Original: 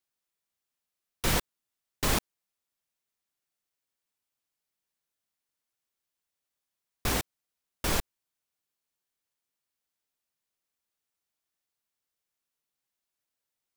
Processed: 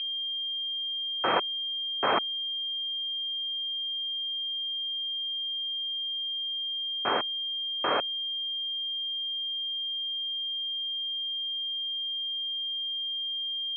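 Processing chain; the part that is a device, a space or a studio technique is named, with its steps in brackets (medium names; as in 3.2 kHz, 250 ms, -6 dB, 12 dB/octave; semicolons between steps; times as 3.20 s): toy sound module (decimation joined by straight lines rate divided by 8×; class-D stage that switches slowly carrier 3.2 kHz; cabinet simulation 500–3900 Hz, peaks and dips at 1.3 kHz +4 dB, 2.5 kHz +7 dB, 3.8 kHz -4 dB); trim +7 dB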